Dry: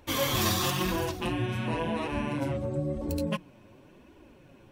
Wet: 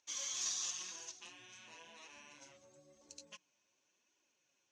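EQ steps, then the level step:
resonant band-pass 6,400 Hz, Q 8.2
high-frequency loss of the air 100 metres
+10.0 dB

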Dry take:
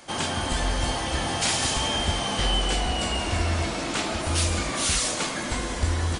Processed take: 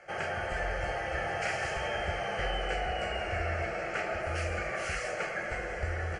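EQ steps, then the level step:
low-pass filter 2,800 Hz 12 dB per octave
low-shelf EQ 170 Hz −11 dB
phaser with its sweep stopped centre 1,000 Hz, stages 6
0.0 dB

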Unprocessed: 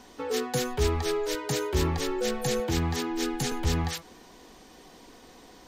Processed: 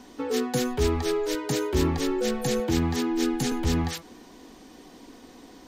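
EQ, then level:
parametric band 270 Hz +8.5 dB 0.73 octaves
0.0 dB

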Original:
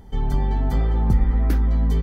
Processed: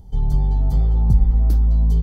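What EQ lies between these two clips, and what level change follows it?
drawn EQ curve 150 Hz 0 dB, 260 Hz −11 dB, 770 Hz −8 dB, 1,900 Hz −22 dB, 4,400 Hz −5 dB
+3.5 dB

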